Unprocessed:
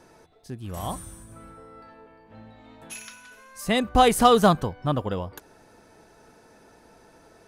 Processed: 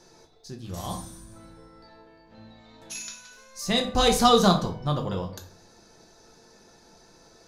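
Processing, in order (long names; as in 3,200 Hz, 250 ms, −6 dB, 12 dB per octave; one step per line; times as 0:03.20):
flat-topped bell 5,100 Hz +11 dB 1.1 octaves
on a send: convolution reverb RT60 0.45 s, pre-delay 5 ms, DRR 2.5 dB
on the sum: level −4.5 dB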